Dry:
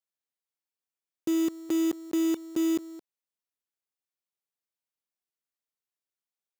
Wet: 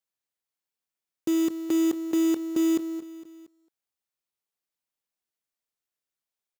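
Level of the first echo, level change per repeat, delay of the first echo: -15.5 dB, -5.5 dB, 230 ms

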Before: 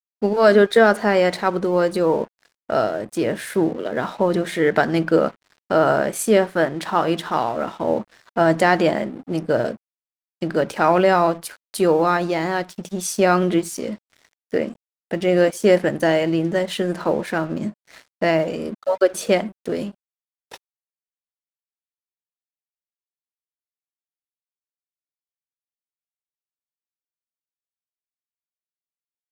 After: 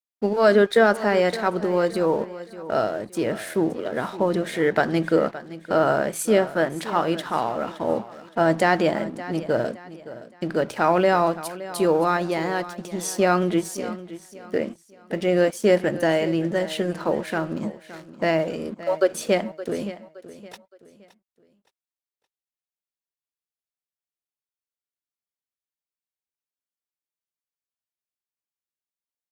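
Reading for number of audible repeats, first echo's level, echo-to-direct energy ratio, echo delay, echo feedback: 3, -15.5 dB, -15.0 dB, 568 ms, 35%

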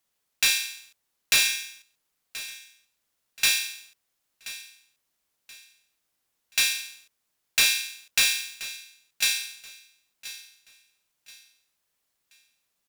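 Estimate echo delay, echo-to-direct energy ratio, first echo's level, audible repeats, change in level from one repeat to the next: 1029 ms, -15.5 dB, -16.0 dB, 2, -10.0 dB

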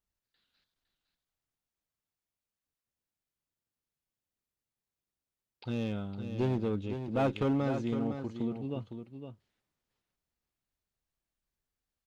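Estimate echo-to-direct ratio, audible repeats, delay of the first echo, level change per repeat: -8.5 dB, 1, 509 ms, no regular repeats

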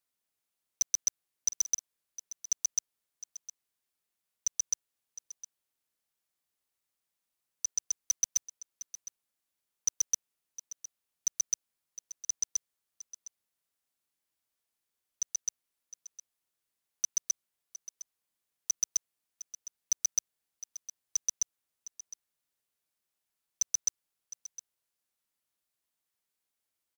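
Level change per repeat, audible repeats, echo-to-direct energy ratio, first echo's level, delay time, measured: no regular repeats, 1, -15.5 dB, -15.5 dB, 710 ms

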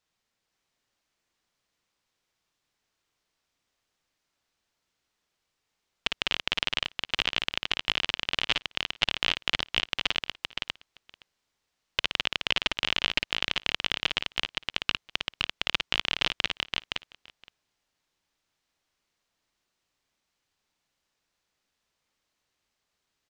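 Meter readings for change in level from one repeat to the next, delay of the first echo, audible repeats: no regular repeats, 55 ms, 4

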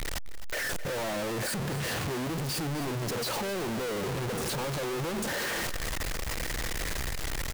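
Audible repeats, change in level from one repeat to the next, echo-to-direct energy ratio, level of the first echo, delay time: 2, -10.0 dB, -13.5 dB, -14.0 dB, 261 ms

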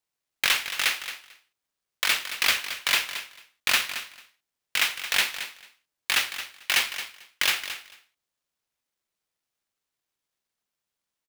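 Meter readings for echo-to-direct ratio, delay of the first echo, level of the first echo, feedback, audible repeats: -11.5 dB, 222 ms, -11.5 dB, 15%, 2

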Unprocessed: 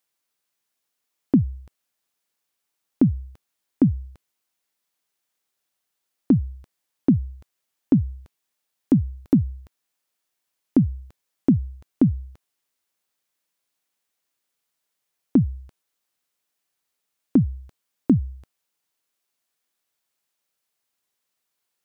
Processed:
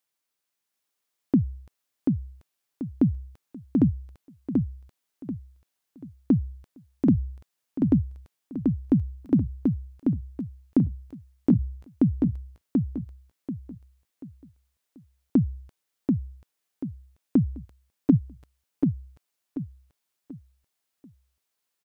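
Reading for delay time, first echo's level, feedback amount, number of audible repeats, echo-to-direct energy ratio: 736 ms, -3.0 dB, 34%, 4, -2.5 dB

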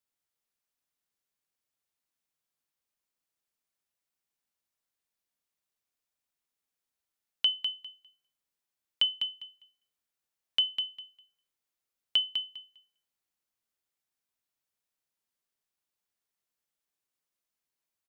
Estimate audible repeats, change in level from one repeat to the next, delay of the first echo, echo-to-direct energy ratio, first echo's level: 2, -15.5 dB, 201 ms, -8.0 dB, -8.0 dB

